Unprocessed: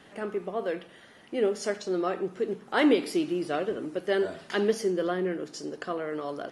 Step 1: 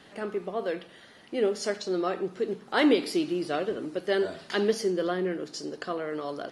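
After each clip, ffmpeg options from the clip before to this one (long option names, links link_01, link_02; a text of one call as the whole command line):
ffmpeg -i in.wav -af "equalizer=frequency=4300:width_type=o:width=0.61:gain=6" out.wav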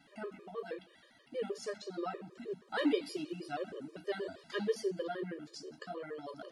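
ffmpeg -i in.wav -af "flanger=delay=7:depth=7.7:regen=-47:speed=0.81:shape=sinusoidal,afftfilt=real='re*gt(sin(2*PI*6.3*pts/sr)*(1-2*mod(floor(b*sr/1024/320),2)),0)':imag='im*gt(sin(2*PI*6.3*pts/sr)*(1-2*mod(floor(b*sr/1024/320),2)),0)':win_size=1024:overlap=0.75,volume=-3.5dB" out.wav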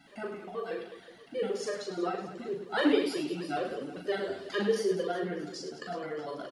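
ffmpeg -i in.wav -af "aecho=1:1:40|104|206.4|370.2|632.4:0.631|0.398|0.251|0.158|0.1,volume=4.5dB" out.wav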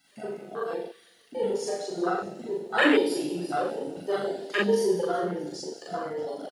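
ffmpeg -i in.wav -af "aecho=1:1:40|84|132.4|185.6|244.2:0.631|0.398|0.251|0.158|0.1,afwtdn=0.0282,crystalizer=i=8.5:c=0" out.wav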